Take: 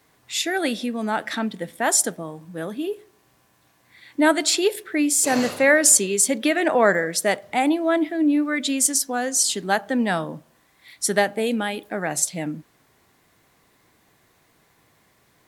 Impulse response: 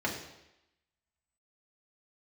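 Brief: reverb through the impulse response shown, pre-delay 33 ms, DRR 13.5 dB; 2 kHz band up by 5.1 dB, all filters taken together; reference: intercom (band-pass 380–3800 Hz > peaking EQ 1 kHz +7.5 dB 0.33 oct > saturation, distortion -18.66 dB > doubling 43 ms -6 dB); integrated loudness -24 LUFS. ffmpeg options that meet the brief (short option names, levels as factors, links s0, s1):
-filter_complex "[0:a]equalizer=f=2000:t=o:g=6,asplit=2[s0][s1];[1:a]atrim=start_sample=2205,adelay=33[s2];[s1][s2]afir=irnorm=-1:irlink=0,volume=0.0841[s3];[s0][s3]amix=inputs=2:normalize=0,highpass=380,lowpass=3800,equalizer=f=1000:t=o:w=0.33:g=7.5,asoftclip=threshold=0.473,asplit=2[s4][s5];[s5]adelay=43,volume=0.501[s6];[s4][s6]amix=inputs=2:normalize=0,volume=0.75"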